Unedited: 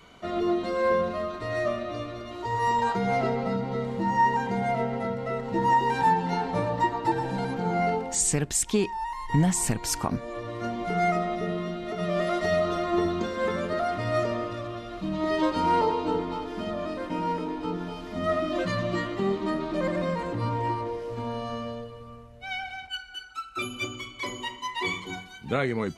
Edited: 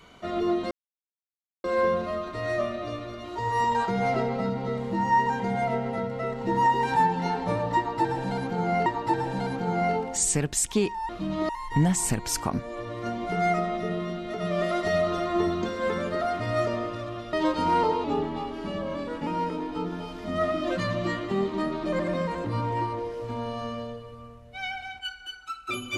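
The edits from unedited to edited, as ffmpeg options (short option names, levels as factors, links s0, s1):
-filter_complex "[0:a]asplit=8[s0][s1][s2][s3][s4][s5][s6][s7];[s0]atrim=end=0.71,asetpts=PTS-STARTPTS,afade=t=out:st=0.706:d=0.004:c=hsin,apad=pad_dur=0.93[s8];[s1]atrim=start=0.71:end=7.932,asetpts=PTS-STARTPTS,afade=t=in:d=0.004:c=hsin[s9];[s2]atrim=start=6.838:end=9.072[s10];[s3]atrim=start=14.908:end=15.312[s11];[s4]atrim=start=9.068:end=14.912[s12];[s5]atrim=start=15.308:end=16.024[s13];[s6]atrim=start=16.02:end=17.15,asetpts=PTS-STARTPTS,asetrate=40572,aresample=44100,atrim=end_sample=54166,asetpts=PTS-STARTPTS[s14];[s7]atrim=start=17.146[s15];[s8][s9]concat=n=2:v=0:a=1[s16];[s16][s10]acrossfade=d=0.004:c1=hsin:c2=hsin[s17];[s17][s11]acrossfade=d=0.004:c1=hsin:c2=hsin[s18];[s18][s12]acrossfade=d=0.004:c1=hsin:c2=hsin[s19];[s19][s13]acrossfade=d=0.004:c1=hsin:c2=hsin[s20];[s20][s14]acrossfade=d=0.004:c1=hsin:c2=hsin[s21];[s21][s15]acrossfade=d=0.004:c1=hsin:c2=hsin"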